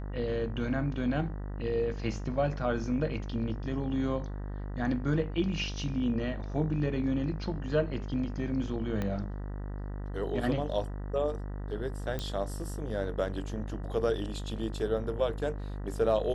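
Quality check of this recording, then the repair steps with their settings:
buzz 50 Hz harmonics 39 -37 dBFS
9.02 pop -20 dBFS
12.19 pop -20 dBFS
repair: de-click; de-hum 50 Hz, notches 39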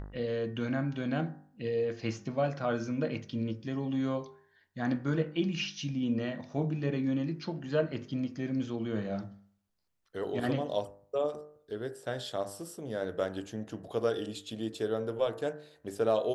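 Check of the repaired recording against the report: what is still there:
9.02 pop

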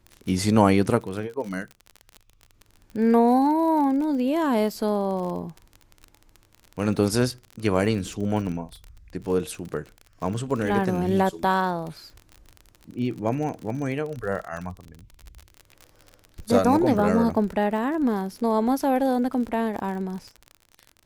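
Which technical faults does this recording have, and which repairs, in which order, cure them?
crackle 41/s -31 dBFS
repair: de-click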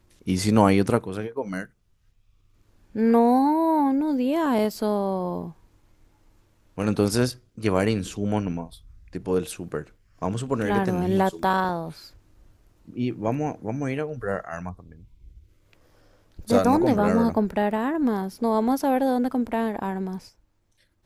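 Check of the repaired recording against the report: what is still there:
none

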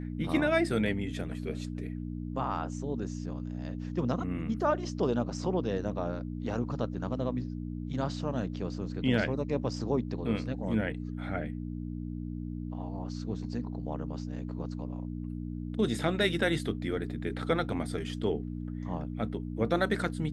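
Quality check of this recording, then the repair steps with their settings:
hum 60 Hz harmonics 5 -37 dBFS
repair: de-hum 60 Hz, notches 5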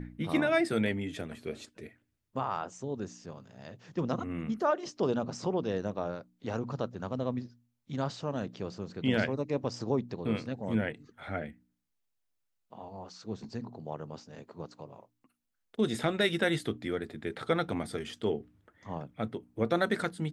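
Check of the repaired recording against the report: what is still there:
none

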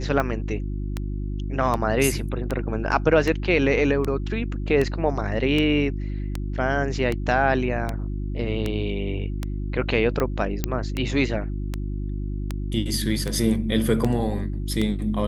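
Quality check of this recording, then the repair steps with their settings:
hum 50 Hz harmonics 7 -28 dBFS
tick 78 rpm -12 dBFS
10.64 pop -8 dBFS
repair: de-click; de-hum 50 Hz, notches 7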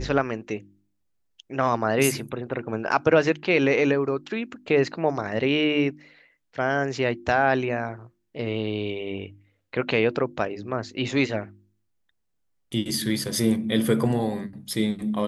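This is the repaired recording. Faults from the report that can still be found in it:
none

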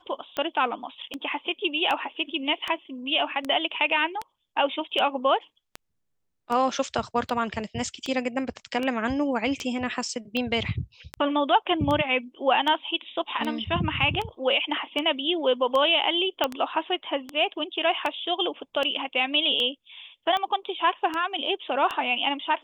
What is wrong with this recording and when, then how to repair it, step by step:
tick 78 rpm -16 dBFS
16.44 pop -9 dBFS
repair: de-click

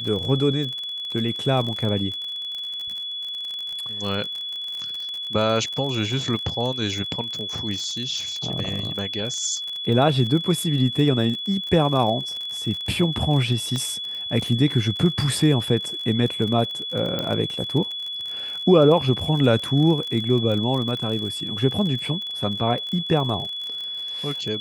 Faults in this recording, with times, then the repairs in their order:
crackle 41/s -28 dBFS
tone 3400 Hz -28 dBFS
13.76 pop -15 dBFS
17.19 pop -12 dBFS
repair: de-click; notch 3400 Hz, Q 30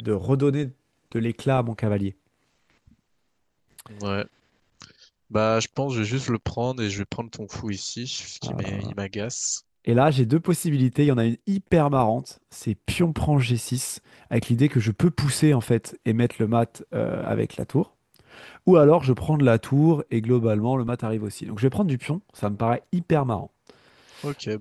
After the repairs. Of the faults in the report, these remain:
none

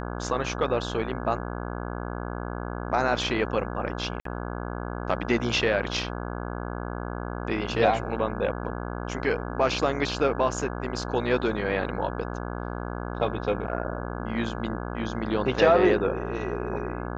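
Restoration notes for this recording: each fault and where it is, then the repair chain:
buzz 60 Hz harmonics 28 -33 dBFS
4.2–4.25 gap 53 ms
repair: de-hum 60 Hz, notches 28; interpolate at 4.2, 53 ms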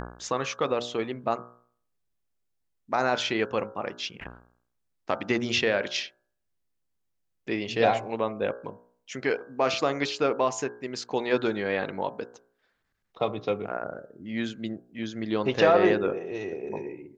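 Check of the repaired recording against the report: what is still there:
none

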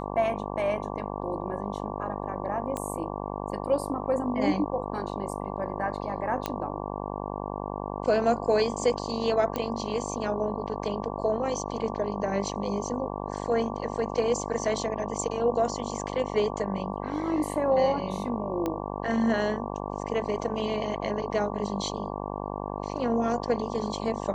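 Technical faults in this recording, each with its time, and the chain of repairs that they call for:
buzz 50 Hz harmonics 23 -34 dBFS
2.77 pop -19 dBFS
6.46 pop -13 dBFS
9.56 pop -15 dBFS
18.66 pop -16 dBFS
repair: de-click; de-hum 50 Hz, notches 23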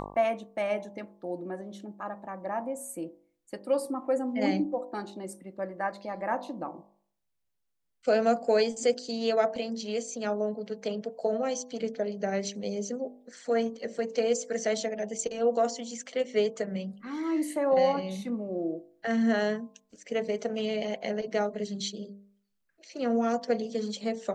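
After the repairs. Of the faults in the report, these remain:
none

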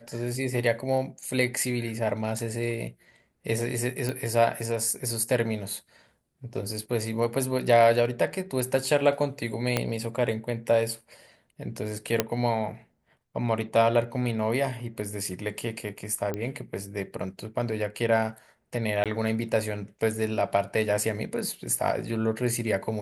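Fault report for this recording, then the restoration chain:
4.09 pop
9.77 pop -9 dBFS
12.2 pop -6 dBFS
16.34 pop -18 dBFS
19.04–19.06 gap 17 ms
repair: de-click; interpolate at 19.04, 17 ms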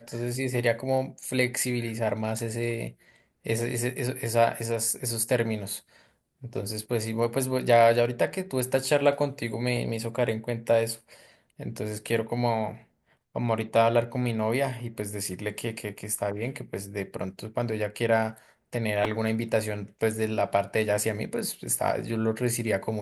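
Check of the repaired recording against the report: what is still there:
9.77 pop

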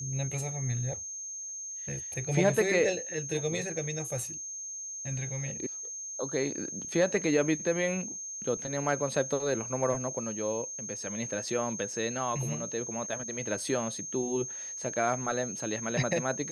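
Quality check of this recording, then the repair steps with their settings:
tone 6400 Hz -37 dBFS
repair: notch 6400 Hz, Q 30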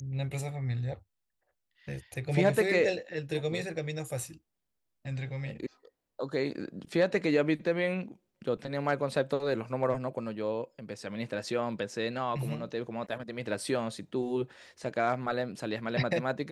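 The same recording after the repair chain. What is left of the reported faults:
none

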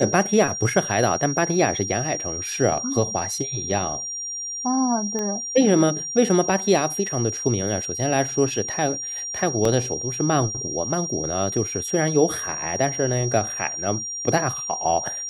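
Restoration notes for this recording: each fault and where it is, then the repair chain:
tone 5700 Hz -28 dBFS
5.19 pop -15 dBFS
9.65 gap 3 ms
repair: de-click; notch 5700 Hz, Q 30; interpolate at 9.65, 3 ms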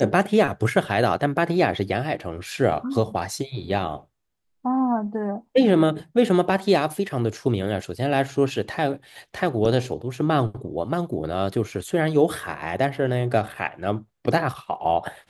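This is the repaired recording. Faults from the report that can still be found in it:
none

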